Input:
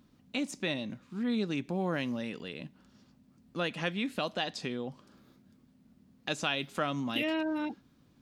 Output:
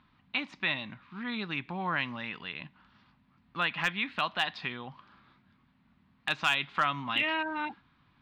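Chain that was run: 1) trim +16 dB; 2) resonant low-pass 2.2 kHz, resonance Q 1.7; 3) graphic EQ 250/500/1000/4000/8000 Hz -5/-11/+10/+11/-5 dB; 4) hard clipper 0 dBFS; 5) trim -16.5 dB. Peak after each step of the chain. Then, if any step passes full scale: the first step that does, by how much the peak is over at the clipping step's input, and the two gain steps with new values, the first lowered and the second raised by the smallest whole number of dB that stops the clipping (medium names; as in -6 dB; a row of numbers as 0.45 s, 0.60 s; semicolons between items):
-0.5 dBFS, +1.5 dBFS, +5.0 dBFS, 0.0 dBFS, -16.5 dBFS; step 2, 5.0 dB; step 1 +11 dB, step 5 -11.5 dB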